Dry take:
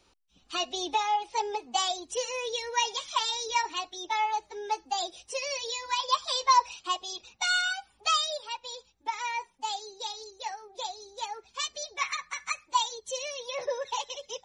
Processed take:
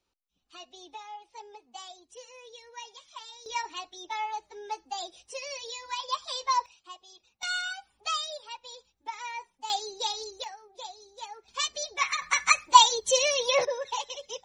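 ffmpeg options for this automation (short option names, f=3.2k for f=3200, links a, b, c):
-af "asetnsamples=n=441:p=0,asendcmd='3.46 volume volume -5dB;6.66 volume volume -15.5dB;7.43 volume volume -5dB;9.7 volume volume 5.5dB;10.44 volume volume -5.5dB;11.48 volume volume 3dB;12.22 volume volume 11dB;13.65 volume volume 0dB',volume=-16dB"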